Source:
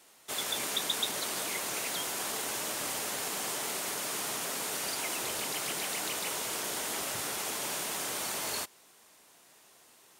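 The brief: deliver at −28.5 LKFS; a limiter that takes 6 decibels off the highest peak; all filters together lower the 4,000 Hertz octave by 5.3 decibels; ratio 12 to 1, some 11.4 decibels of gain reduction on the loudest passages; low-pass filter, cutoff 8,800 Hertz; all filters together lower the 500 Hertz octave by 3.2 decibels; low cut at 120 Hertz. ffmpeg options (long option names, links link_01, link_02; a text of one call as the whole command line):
ffmpeg -i in.wav -af "highpass=120,lowpass=8800,equalizer=frequency=500:width_type=o:gain=-4,equalizer=frequency=4000:width_type=o:gain=-6.5,acompressor=threshold=-44dB:ratio=12,volume=19.5dB,alimiter=limit=-20.5dB:level=0:latency=1" out.wav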